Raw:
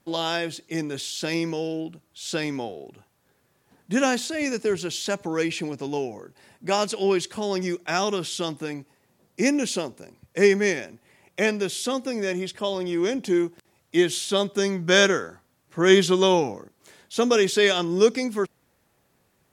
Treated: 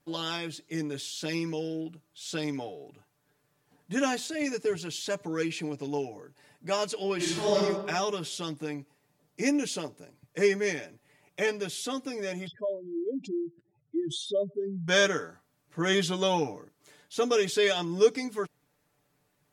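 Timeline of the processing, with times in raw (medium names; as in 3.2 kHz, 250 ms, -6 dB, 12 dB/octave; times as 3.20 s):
7.16–7.56 s: reverb throw, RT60 1.1 s, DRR -8.5 dB
12.47–14.88 s: spectral contrast enhancement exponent 3.2
whole clip: comb 6.8 ms, depth 70%; trim -7.5 dB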